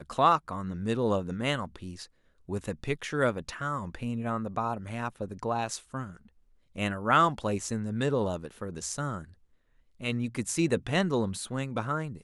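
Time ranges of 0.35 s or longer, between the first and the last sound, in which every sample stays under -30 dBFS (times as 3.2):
2.02–2.5
6.04–6.78
9.19–10.04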